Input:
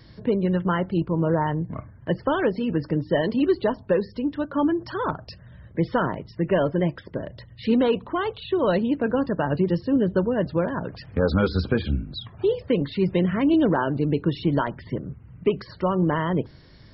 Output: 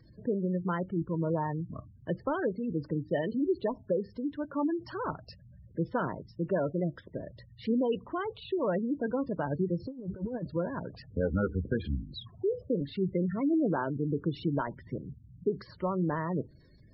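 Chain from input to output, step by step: 11.02–11.80 s: steep low-pass 2.1 kHz 36 dB/octave; spectral gate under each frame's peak -20 dB strong; 9.80–10.43 s: compressor with a negative ratio -27 dBFS, ratio -0.5; trim -8 dB

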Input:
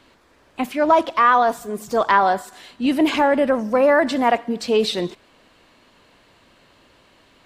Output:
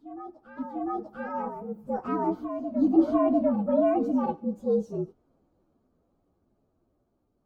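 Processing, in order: frequency axis rescaled in octaves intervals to 117%; Doppler pass-by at 3.33 s, 7 m/s, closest 8.8 m; FFT filter 350 Hz 0 dB, 1.1 kHz -11 dB, 2.1 kHz -28 dB; reverse echo 697 ms -9.5 dB

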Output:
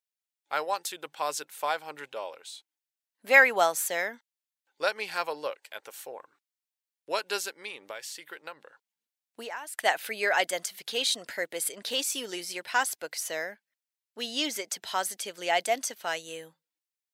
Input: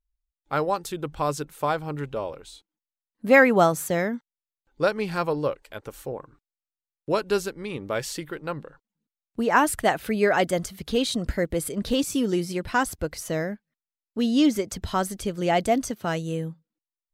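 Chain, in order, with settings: high-pass 920 Hz 12 dB/octave; peaking EQ 1.2 kHz -7.5 dB 0.5 oct; 7.68–9.79 s: compression 5:1, threshold -40 dBFS, peak gain reduction 19 dB; trim +2.5 dB

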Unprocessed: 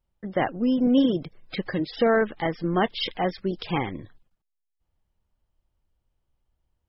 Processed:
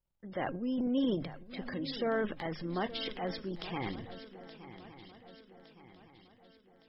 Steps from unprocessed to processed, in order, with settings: hum notches 50/100/150 Hz; transient shaper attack -2 dB, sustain +10 dB; feedback comb 540 Hz, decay 0.38 s, mix 40%; on a send: shuffle delay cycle 1163 ms, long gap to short 3:1, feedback 46%, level -14.5 dB; on the sum: trim -7 dB

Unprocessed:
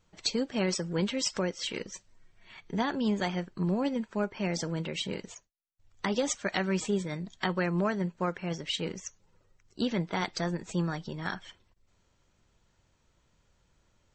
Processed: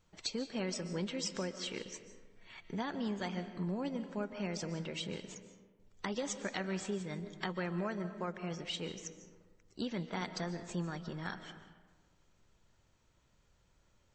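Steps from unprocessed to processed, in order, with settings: compression 1.5:1, threshold -42 dBFS, peak gain reduction 6.5 dB; on a send: reverberation RT60 1.4 s, pre-delay 105 ms, DRR 10 dB; on the sum: trim -2.5 dB

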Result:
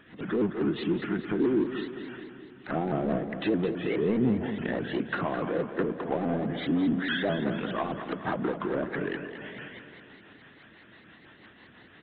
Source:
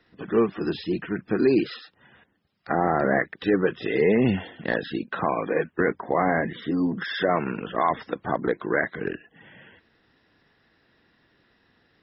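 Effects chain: low-pass that closes with the level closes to 520 Hz, closed at -19 dBFS; high-pass 140 Hz 6 dB/octave; peaking EQ 470 Hz -4.5 dB 0.63 oct; in parallel at +1 dB: peak limiter -19.5 dBFS, peak gain reduction 7.5 dB; on the sum: power-law waveshaper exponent 0.7; rotary cabinet horn 6 Hz; feedback delay 213 ms, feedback 55%, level -10 dB; on a send at -15.5 dB: reverberation RT60 3.1 s, pre-delay 22 ms; on the sum: resampled via 8 kHz; vibrato with a chosen wave saw up 4.8 Hz, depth 160 cents; trim -7.5 dB

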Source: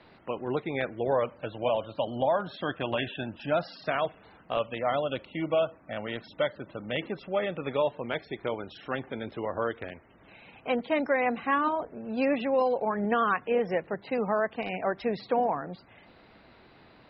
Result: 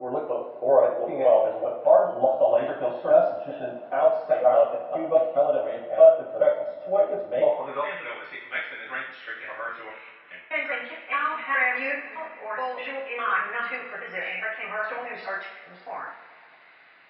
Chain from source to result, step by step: slices played last to first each 206 ms, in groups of 3; two-slope reverb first 0.55 s, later 2.8 s, from -18 dB, DRR -10 dB; band-pass sweep 640 Hz -> 2 kHz, 7.48–8.03 s

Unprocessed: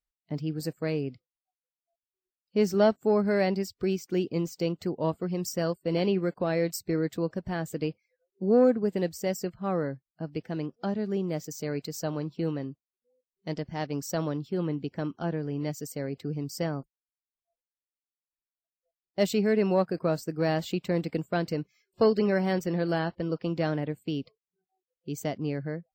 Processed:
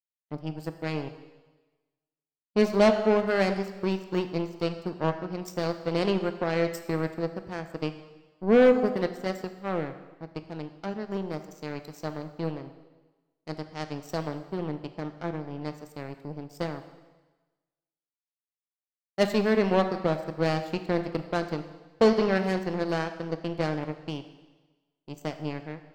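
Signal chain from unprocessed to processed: power-law waveshaper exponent 2; plate-style reverb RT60 1.2 s, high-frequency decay 1×, DRR 9 dB; sine folder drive 5 dB, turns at -12 dBFS

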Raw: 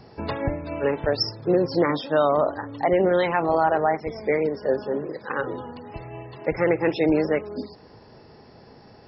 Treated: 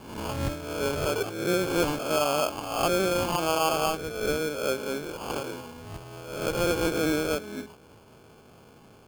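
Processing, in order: reverse spectral sustain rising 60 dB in 0.84 s; sample-and-hold 23×; trim -6.5 dB

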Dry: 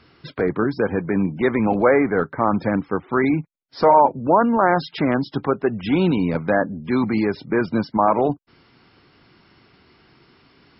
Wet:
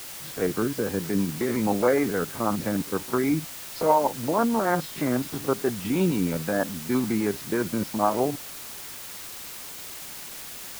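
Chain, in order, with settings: spectrogram pixelated in time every 50 ms; rotary cabinet horn 6.3 Hz; word length cut 6-bit, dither triangular; trim -3 dB

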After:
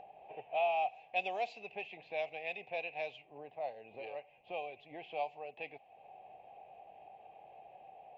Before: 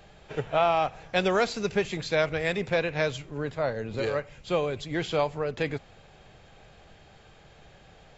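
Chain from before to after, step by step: two resonant band-passes 1.4 kHz, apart 1.8 oct; level-controlled noise filter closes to 1 kHz, open at -29.5 dBFS; upward compressor, threshold -40 dBFS; trim -2.5 dB

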